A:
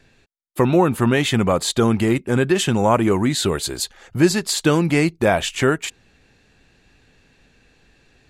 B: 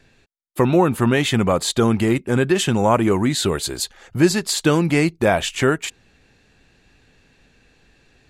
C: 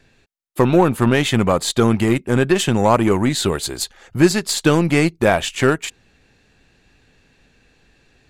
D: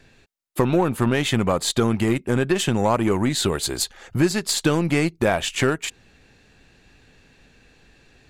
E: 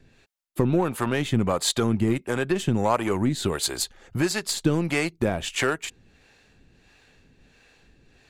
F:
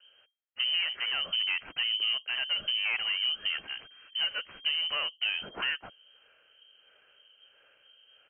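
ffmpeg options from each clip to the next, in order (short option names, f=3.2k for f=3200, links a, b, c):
-af anull
-af "aeval=exprs='0.668*(cos(1*acos(clip(val(0)/0.668,-1,1)))-cos(1*PI/2))+0.0211*(cos(7*acos(clip(val(0)/0.668,-1,1)))-cos(7*PI/2))+0.0133*(cos(8*acos(clip(val(0)/0.668,-1,1)))-cos(8*PI/2))':c=same,volume=2dB"
-af "acompressor=threshold=-23dB:ratio=2,volume=2dB"
-filter_complex "[0:a]acrossover=split=430[a][b];[a]aeval=exprs='val(0)*(1-0.7/2+0.7/2*cos(2*PI*1.5*n/s))':c=same[c];[b]aeval=exprs='val(0)*(1-0.7/2-0.7/2*cos(2*PI*1.5*n/s))':c=same[d];[c][d]amix=inputs=2:normalize=0"
-af "equalizer=f=2.3k:t=o:w=0.2:g=-9.5,aresample=16000,asoftclip=type=tanh:threshold=-20.5dB,aresample=44100,lowpass=f=2.7k:t=q:w=0.5098,lowpass=f=2.7k:t=q:w=0.6013,lowpass=f=2.7k:t=q:w=0.9,lowpass=f=2.7k:t=q:w=2.563,afreqshift=-3200,volume=-3.5dB"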